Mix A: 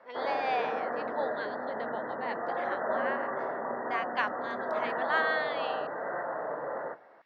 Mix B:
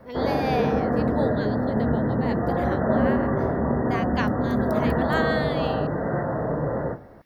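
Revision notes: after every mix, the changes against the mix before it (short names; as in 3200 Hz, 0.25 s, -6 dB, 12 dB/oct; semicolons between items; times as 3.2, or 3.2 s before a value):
background: send +7.0 dB; master: remove BPF 730–2900 Hz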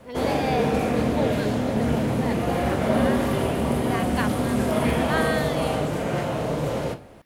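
background: remove brick-wall FIR low-pass 2000 Hz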